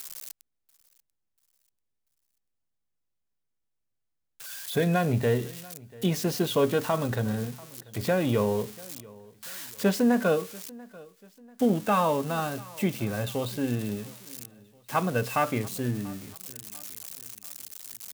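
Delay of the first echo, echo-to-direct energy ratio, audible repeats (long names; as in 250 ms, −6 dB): 689 ms, −21.5 dB, 2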